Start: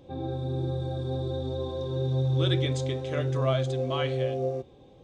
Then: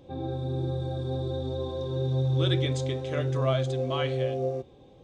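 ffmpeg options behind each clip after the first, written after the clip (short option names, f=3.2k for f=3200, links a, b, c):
-af anull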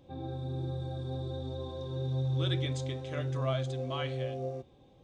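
-af "equalizer=f=430:t=o:w=0.65:g=-5,volume=-5dB"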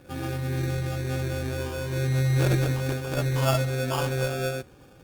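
-af "aresample=11025,aresample=44100,acrusher=samples=22:mix=1:aa=0.000001,volume=8dB" -ar 48000 -c:a libopus -b:a 24k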